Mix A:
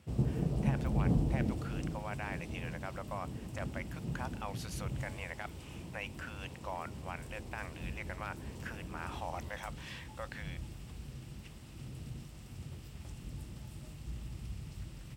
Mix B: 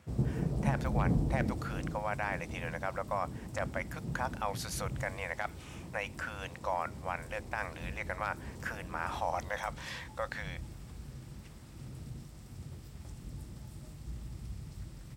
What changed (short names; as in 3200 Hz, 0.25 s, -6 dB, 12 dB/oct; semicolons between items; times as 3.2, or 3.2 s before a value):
speech +7.5 dB; master: add bell 2800 Hz -7.5 dB 0.51 oct